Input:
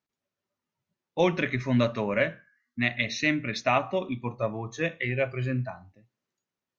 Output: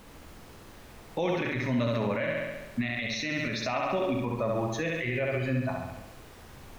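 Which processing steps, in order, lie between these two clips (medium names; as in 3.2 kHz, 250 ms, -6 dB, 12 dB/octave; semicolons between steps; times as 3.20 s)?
peaking EQ 4.7 kHz +5.5 dB 1.6 oct; added noise pink -55 dBFS; flutter echo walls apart 11.6 m, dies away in 0.84 s; in parallel at 0 dB: compression, threshold -36 dBFS, peak gain reduction 17.5 dB; on the sum: peak limiter -19 dBFS, peak gain reduction 11.5 dB; treble shelf 2.6 kHz -7.5 dB; on a send at -12.5 dB: reverberation RT60 0.40 s, pre-delay 27 ms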